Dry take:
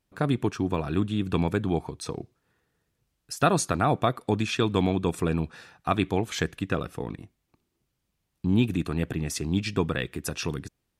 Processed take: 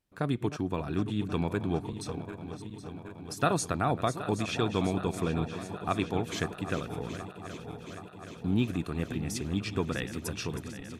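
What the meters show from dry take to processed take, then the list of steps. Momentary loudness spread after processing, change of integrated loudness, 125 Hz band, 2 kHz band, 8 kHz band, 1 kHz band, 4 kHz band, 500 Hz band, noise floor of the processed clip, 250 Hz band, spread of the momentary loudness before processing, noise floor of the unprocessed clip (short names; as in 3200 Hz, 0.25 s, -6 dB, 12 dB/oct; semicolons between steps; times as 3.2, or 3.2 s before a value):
13 LU, -5.0 dB, -4.5 dB, -4.0 dB, -4.5 dB, -4.0 dB, -4.5 dB, -4.5 dB, -46 dBFS, -4.5 dB, 12 LU, -79 dBFS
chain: regenerating reverse delay 0.386 s, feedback 83%, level -12 dB; gain -5 dB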